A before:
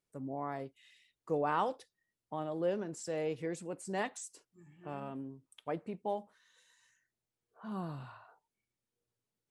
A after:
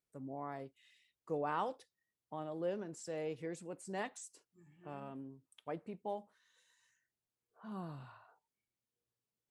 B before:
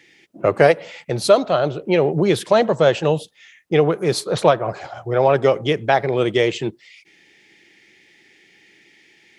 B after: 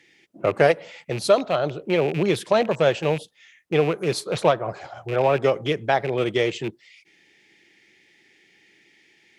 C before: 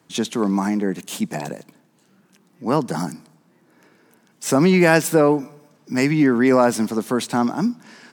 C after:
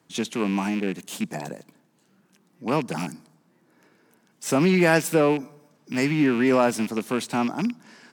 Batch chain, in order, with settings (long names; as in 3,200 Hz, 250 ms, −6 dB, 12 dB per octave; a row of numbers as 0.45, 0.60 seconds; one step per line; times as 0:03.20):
loose part that buzzes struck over −25 dBFS, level −19 dBFS
harmonic generator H 7 −37 dB, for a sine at 0 dBFS
level −4 dB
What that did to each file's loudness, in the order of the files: −5.0, −4.0, −4.0 LU